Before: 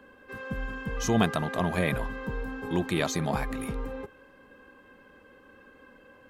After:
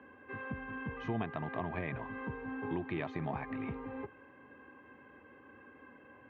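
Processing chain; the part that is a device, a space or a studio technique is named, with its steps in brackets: bass amplifier (compression 3:1, threshold -34 dBFS, peak gain reduction 12 dB; cabinet simulation 79–2400 Hz, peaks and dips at 190 Hz -8 dB, 520 Hz -8 dB, 1.4 kHz -7 dB); trim +1 dB

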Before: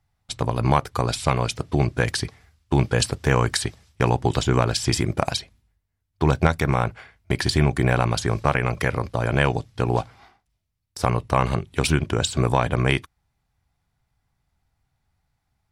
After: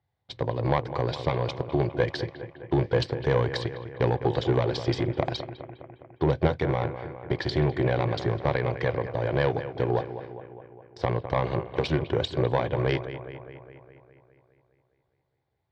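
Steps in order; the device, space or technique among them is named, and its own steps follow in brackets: analogue delay pedal into a guitar amplifier (bucket-brigade echo 205 ms, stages 4096, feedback 62%, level -13 dB; valve stage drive 11 dB, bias 0.65; cabinet simulation 92–4000 Hz, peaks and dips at 210 Hz -8 dB, 360 Hz +5 dB, 510 Hz +7 dB, 1.3 kHz -9 dB, 2.6 kHz -7 dB)

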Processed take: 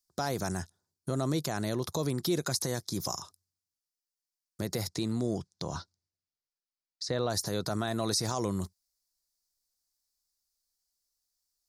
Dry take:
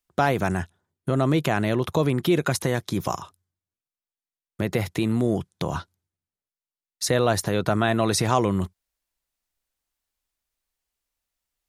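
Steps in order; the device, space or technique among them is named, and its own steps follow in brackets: over-bright horn tweeter (resonant high shelf 3.7 kHz +9.5 dB, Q 3; peak limiter -10.5 dBFS, peak gain reduction 11 dB); 4.87–7.29 s: low-pass 7.5 kHz -> 3.5 kHz 12 dB/octave; trim -8.5 dB

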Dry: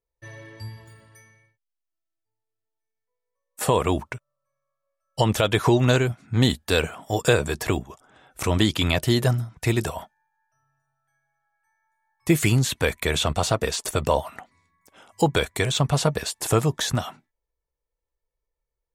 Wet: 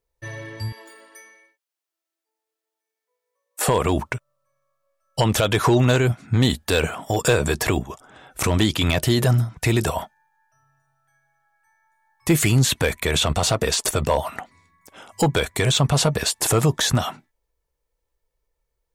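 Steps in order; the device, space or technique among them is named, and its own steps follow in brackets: clipper into limiter (hard clipper -11 dBFS, distortion -21 dB; peak limiter -17.5 dBFS, peak gain reduction 6.5 dB); 0.72–3.68 s: steep high-pass 290 Hz 36 dB/octave; trim +7.5 dB

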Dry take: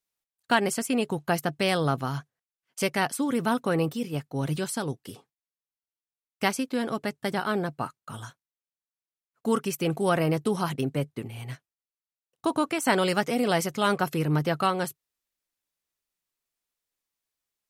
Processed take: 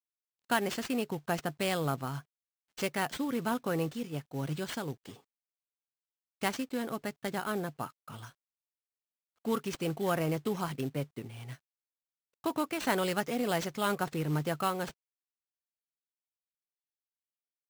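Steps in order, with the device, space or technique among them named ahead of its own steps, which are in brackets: early companding sampler (sample-rate reducer 12 kHz, jitter 0%; companded quantiser 6-bit); trim -6.5 dB

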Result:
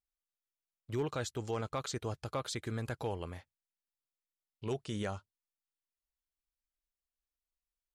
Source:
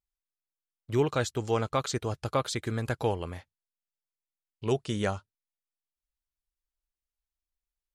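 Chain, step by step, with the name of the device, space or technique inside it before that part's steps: clipper into limiter (hard clipper -17.5 dBFS, distortion -28 dB; peak limiter -21.5 dBFS, peak gain reduction 4 dB); trim -5.5 dB

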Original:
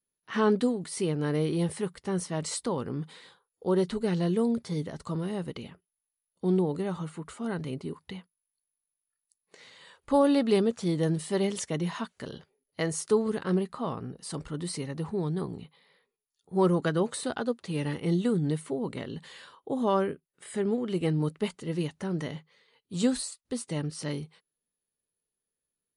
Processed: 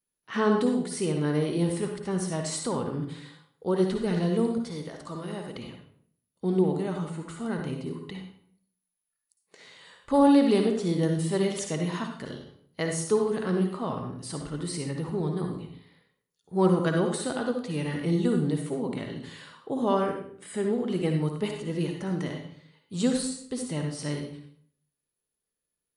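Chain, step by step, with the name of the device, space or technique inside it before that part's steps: 4.62–5.55 s: bass shelf 320 Hz -9.5 dB; bathroom (reverberation RT60 0.60 s, pre-delay 52 ms, DRR 3 dB)

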